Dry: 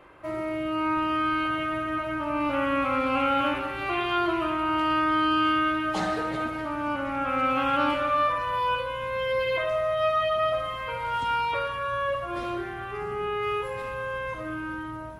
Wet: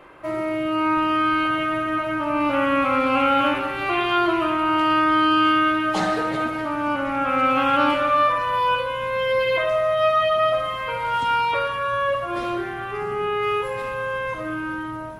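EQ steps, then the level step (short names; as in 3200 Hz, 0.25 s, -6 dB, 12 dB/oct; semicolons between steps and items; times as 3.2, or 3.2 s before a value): bell 70 Hz -11.5 dB 0.7 oct; +5.5 dB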